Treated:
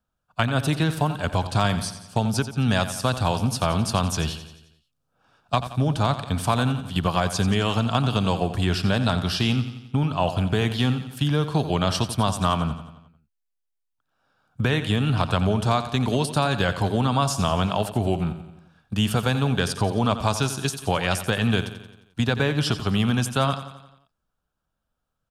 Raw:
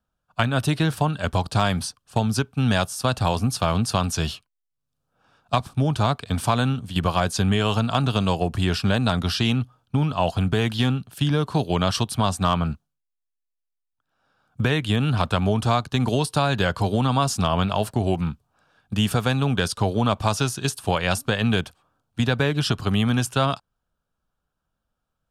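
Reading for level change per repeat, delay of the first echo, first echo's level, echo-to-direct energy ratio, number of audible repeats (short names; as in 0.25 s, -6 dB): -5.5 dB, 88 ms, -12.0 dB, -10.5 dB, 5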